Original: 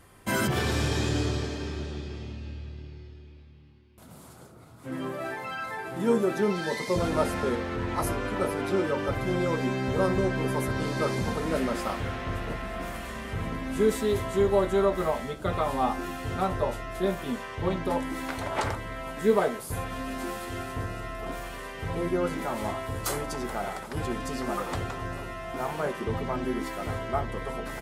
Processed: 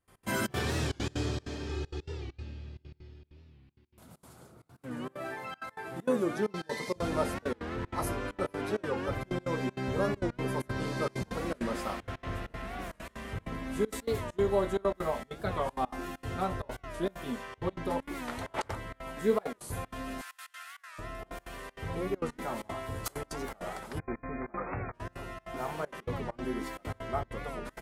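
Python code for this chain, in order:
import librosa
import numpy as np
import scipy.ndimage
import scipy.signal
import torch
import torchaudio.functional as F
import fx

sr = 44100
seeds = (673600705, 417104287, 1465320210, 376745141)

y = fx.comb(x, sr, ms=2.4, depth=0.96, at=(1.69, 2.43))
y = fx.highpass(y, sr, hz=1200.0, slope=24, at=(20.21, 20.99))
y = fx.step_gate(y, sr, bpm=195, pattern='.x.xxx.xxxxx', floor_db=-24.0, edge_ms=4.5)
y = fx.brickwall_lowpass(y, sr, high_hz=2500.0, at=(23.98, 24.94), fade=0.02)
y = fx.record_warp(y, sr, rpm=45.0, depth_cents=160.0)
y = y * librosa.db_to_amplitude(-4.5)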